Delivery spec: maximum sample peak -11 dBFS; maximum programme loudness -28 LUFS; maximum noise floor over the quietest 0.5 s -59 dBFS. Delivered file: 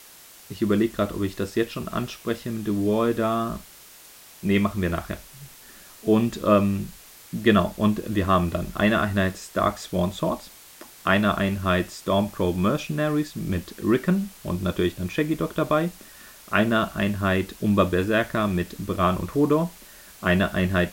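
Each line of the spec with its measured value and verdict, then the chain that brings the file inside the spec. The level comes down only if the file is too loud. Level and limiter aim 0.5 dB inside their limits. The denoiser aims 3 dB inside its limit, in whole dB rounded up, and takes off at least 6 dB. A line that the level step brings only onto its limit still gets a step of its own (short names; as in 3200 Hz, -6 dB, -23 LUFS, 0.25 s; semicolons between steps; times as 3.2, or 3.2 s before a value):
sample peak -5.0 dBFS: fail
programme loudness -24.0 LUFS: fail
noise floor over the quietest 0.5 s -48 dBFS: fail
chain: denoiser 10 dB, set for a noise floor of -48 dBFS; gain -4.5 dB; limiter -11.5 dBFS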